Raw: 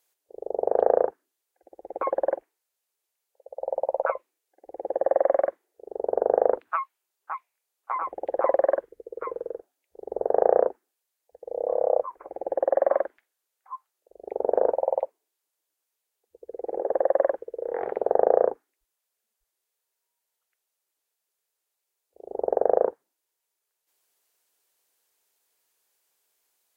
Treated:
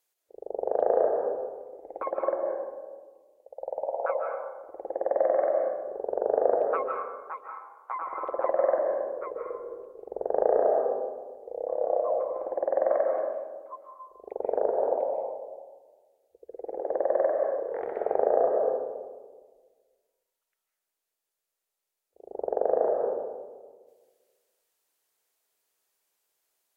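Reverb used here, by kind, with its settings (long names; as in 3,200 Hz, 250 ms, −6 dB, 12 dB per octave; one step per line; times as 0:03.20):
comb and all-pass reverb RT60 1.5 s, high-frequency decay 0.3×, pre-delay 115 ms, DRR 1 dB
level −5 dB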